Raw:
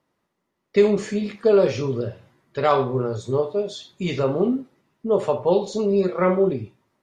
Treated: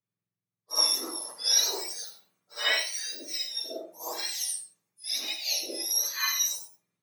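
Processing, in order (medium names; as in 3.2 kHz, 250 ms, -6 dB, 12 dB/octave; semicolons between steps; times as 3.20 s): spectrum inverted on a logarithmic axis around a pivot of 1.5 kHz; reverse echo 57 ms -7.5 dB; gated-style reverb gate 120 ms rising, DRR 8 dB; three bands expanded up and down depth 40%; trim -5 dB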